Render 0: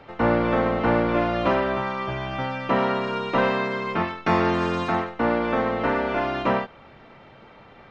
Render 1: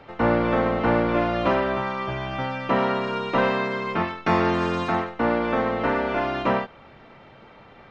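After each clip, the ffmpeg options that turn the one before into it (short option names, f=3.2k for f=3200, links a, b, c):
-af anull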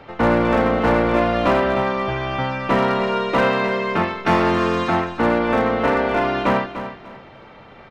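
-af "aeval=exprs='clip(val(0),-1,0.133)':c=same,aecho=1:1:296|592|888:0.282|0.0761|0.0205,volume=4.5dB"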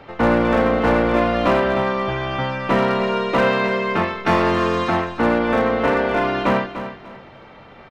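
-filter_complex "[0:a]asplit=2[a][b];[b]adelay=21,volume=-13dB[c];[a][c]amix=inputs=2:normalize=0"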